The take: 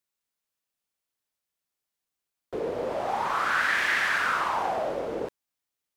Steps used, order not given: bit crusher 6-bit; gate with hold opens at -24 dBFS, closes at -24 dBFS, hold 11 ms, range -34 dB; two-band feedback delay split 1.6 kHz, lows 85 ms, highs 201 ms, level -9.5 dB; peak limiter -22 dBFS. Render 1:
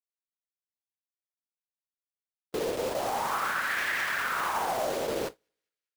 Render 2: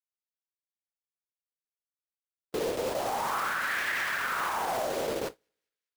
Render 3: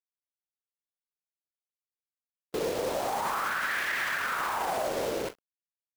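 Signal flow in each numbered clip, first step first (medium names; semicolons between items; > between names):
bit crusher > peak limiter > two-band feedback delay > gate with hold; bit crusher > two-band feedback delay > peak limiter > gate with hold; two-band feedback delay > bit crusher > gate with hold > peak limiter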